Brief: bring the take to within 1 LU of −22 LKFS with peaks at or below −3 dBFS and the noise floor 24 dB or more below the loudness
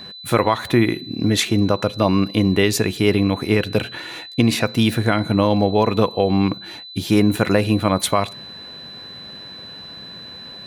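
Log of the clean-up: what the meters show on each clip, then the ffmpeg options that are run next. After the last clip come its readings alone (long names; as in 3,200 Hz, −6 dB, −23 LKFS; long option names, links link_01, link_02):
interfering tone 4,000 Hz; level of the tone −35 dBFS; integrated loudness −19.0 LKFS; sample peak −4.0 dBFS; target loudness −22.0 LKFS
→ -af "bandreject=frequency=4000:width=30"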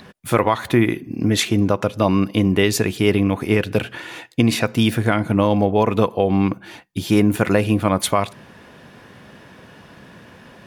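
interfering tone none found; integrated loudness −19.0 LKFS; sample peak −4.0 dBFS; target loudness −22.0 LKFS
→ -af "volume=-3dB"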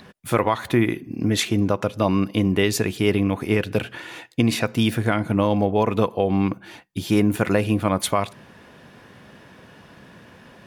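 integrated loudness −22.0 LKFS; sample peak −7.0 dBFS; background noise floor −49 dBFS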